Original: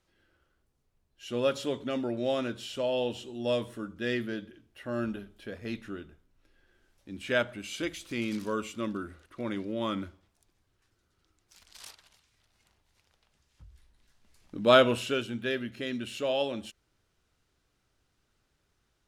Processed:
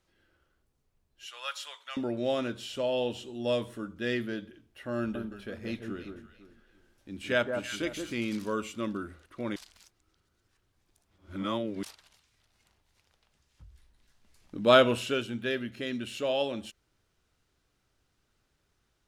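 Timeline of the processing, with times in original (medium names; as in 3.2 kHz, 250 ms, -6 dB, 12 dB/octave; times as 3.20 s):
1.26–1.97 s: high-pass 1 kHz 24 dB/octave
4.98–8.15 s: echo whose repeats swap between lows and highs 169 ms, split 1.3 kHz, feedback 50%, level -4.5 dB
9.56–11.83 s: reverse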